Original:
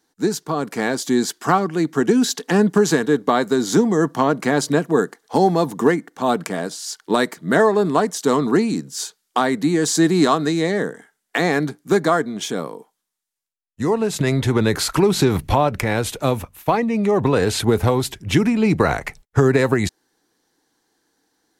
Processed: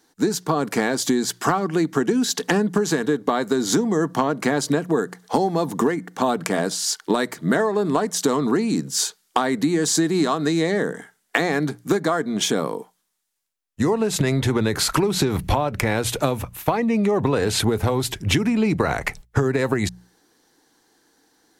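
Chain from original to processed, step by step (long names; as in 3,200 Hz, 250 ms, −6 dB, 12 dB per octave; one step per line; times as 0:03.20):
mains-hum notches 60/120/180 Hz
downward compressor 10 to 1, threshold −23 dBFS, peak gain reduction 13.5 dB
level +6.5 dB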